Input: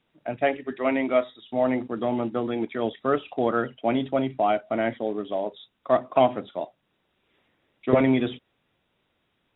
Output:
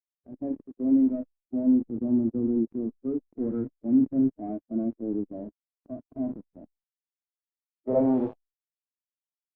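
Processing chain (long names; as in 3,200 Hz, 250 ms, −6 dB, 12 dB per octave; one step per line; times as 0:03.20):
0:05.25–0:06.05: high-pass filter 99 Hz 6 dB per octave
bit reduction 5 bits
hard clipping −20.5 dBFS, distortion −9 dB
harmonic and percussive parts rebalanced percussive −17 dB
low-pass filter sweep 280 Hz → 1,300 Hz, 0:06.86–0:09.29
0:03.29–0:04.57: dynamic equaliser 1,800 Hz, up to +7 dB, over −53 dBFS, Q 1.5
Opus 64 kbit/s 48,000 Hz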